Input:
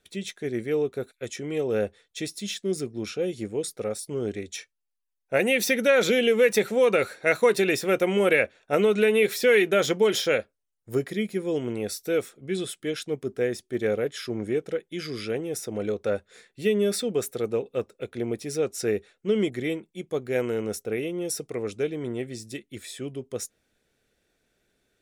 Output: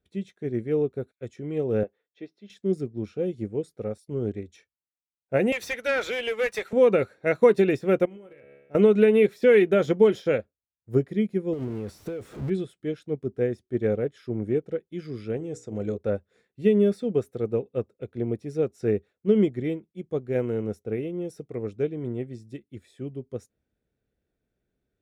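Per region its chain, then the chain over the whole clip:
0:01.83–0:02.50: high-pass filter 350 Hz + high-frequency loss of the air 270 metres
0:05.52–0:06.73: high-pass filter 990 Hz + leveller curve on the samples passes 2
0:08.05–0:08.75: tuned comb filter 70 Hz, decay 0.94 s, mix 80% + downward compressor 16 to 1, threshold −35 dBFS + hard clipping −30 dBFS
0:11.53–0:12.50: converter with a step at zero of −29 dBFS + downward compressor 10 to 1, threshold −27 dBFS
0:15.37–0:15.98: low-pass with resonance 7,400 Hz + mains-hum notches 60/120/180/240/300/360/420/480/540 Hz
whole clip: high-pass filter 54 Hz; spectral tilt −3.5 dB per octave; expander for the loud parts 1.5 to 1, over −37 dBFS

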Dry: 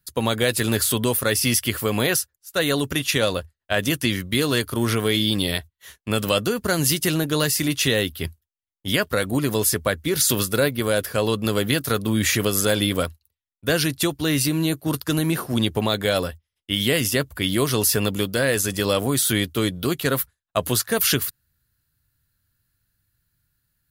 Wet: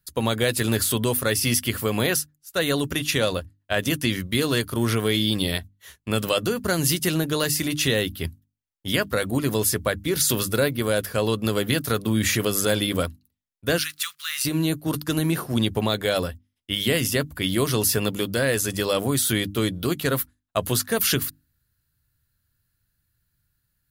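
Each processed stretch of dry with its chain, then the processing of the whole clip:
0:13.78–0:14.45: one scale factor per block 5 bits + elliptic high-pass filter 1,200 Hz
whole clip: low-shelf EQ 230 Hz +3 dB; mains-hum notches 50/100/150/200/250/300 Hz; level −2 dB

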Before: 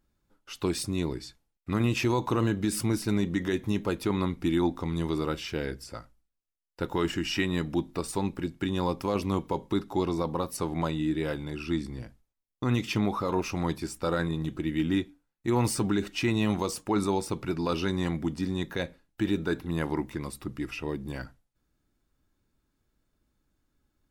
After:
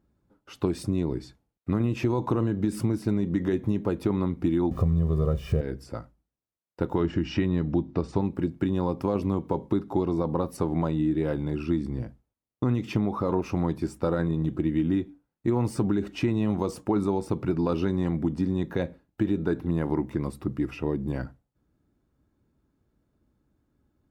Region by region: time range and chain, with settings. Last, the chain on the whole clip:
0:04.71–0:05.61: spike at every zero crossing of −27 dBFS + spectral tilt −3.5 dB per octave + comb filter 1.7 ms, depth 86%
0:07.00–0:08.21: low-pass filter 6,100 Hz 24 dB per octave + low-shelf EQ 150 Hz +7 dB
whole clip: high-pass filter 59 Hz; tilt shelving filter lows +8 dB, about 1,400 Hz; downward compressor, threshold −21 dBFS

